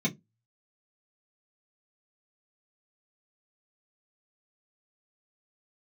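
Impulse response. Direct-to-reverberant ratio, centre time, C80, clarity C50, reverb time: -5.0 dB, 13 ms, 32.0 dB, 21.0 dB, 0.20 s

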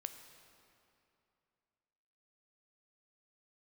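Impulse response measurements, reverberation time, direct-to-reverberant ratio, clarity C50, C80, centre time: 2.7 s, 7.5 dB, 9.0 dB, 9.5 dB, 29 ms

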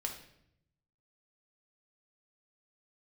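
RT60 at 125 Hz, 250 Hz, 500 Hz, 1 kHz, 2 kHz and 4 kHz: 1.3, 1.0, 0.80, 0.65, 0.65, 0.60 s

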